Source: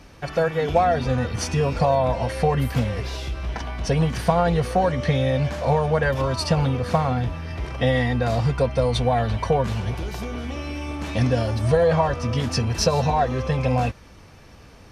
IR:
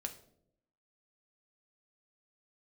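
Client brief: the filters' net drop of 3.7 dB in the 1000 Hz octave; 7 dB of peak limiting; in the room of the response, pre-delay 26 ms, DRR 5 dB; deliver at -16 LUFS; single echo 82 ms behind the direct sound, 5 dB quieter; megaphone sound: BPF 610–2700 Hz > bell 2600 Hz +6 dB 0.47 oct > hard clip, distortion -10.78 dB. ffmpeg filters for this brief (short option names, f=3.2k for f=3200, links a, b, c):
-filter_complex "[0:a]equalizer=f=1k:t=o:g=-3.5,alimiter=limit=-14dB:level=0:latency=1,aecho=1:1:82:0.562,asplit=2[a][b];[1:a]atrim=start_sample=2205,adelay=26[c];[b][c]afir=irnorm=-1:irlink=0,volume=-3.5dB[d];[a][d]amix=inputs=2:normalize=0,highpass=610,lowpass=2.7k,equalizer=f=2.6k:t=o:w=0.47:g=6,asoftclip=type=hard:threshold=-24.5dB,volume=14dB"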